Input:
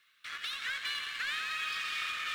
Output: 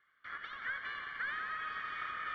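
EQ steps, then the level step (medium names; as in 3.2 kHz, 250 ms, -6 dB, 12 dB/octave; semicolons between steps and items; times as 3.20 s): Savitzky-Golay filter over 41 samples; distance through air 140 m; +2.5 dB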